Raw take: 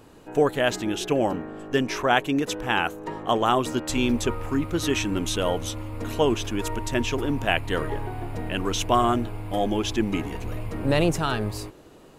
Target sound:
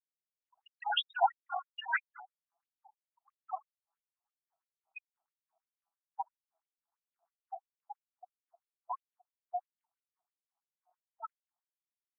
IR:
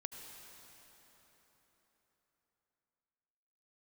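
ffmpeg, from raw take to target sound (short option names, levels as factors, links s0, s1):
-filter_complex "[0:a]firequalizer=gain_entry='entry(170,0);entry(5100,-9);entry(11000,1)':delay=0.05:min_phase=1,acrossover=split=150|530[s0][s1][s2];[s0]acompressor=threshold=0.0126:ratio=4[s3];[s1]acompressor=threshold=0.0251:ratio=4[s4];[s2]acompressor=threshold=0.02:ratio=4[s5];[s3][s4][s5]amix=inputs=3:normalize=0,asplit=2[s6][s7];[s7]acrusher=bits=3:dc=4:mix=0:aa=0.000001,volume=0.531[s8];[s6][s8]amix=inputs=2:normalize=0,asplit=3[s9][s10][s11];[s9]afade=t=out:st=0.65:d=0.02[s12];[s10]asplit=2[s13][s14];[s14]highpass=f=720:p=1,volume=31.6,asoftclip=type=tanh:threshold=0.237[s15];[s13][s15]amix=inputs=2:normalize=0,lowpass=f=6200:p=1,volume=0.501,afade=t=in:st=0.65:d=0.02,afade=t=out:st=2.11:d=0.02[s16];[s11]afade=t=in:st=2.11:d=0.02[s17];[s12][s16][s17]amix=inputs=3:normalize=0,lowshelf=f=360:g=7,afftfilt=real='re*gte(hypot(re,im),0.2)':imag='im*gte(hypot(re,im),0.2)':win_size=1024:overlap=0.75,asplit=2[s18][s19];[s19]aecho=0:1:76:0.133[s20];[s18][s20]amix=inputs=2:normalize=0,afftfilt=real='re*between(b*sr/1024,920*pow(7100/920,0.5+0.5*sin(2*PI*3*pts/sr))/1.41,920*pow(7100/920,0.5+0.5*sin(2*PI*3*pts/sr))*1.41)':imag='im*between(b*sr/1024,920*pow(7100/920,0.5+0.5*sin(2*PI*3*pts/sr))/1.41,920*pow(7100/920,0.5+0.5*sin(2*PI*3*pts/sr))*1.41)':win_size=1024:overlap=0.75"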